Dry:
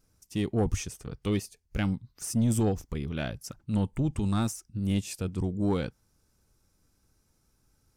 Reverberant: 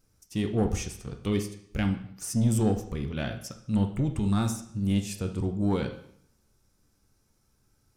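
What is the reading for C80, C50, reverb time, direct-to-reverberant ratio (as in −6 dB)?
13.0 dB, 10.0 dB, 0.65 s, 5.5 dB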